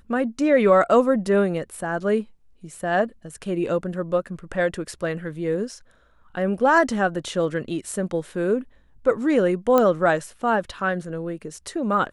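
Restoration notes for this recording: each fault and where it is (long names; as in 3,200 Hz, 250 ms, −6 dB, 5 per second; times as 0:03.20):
0:09.78: click −7 dBFS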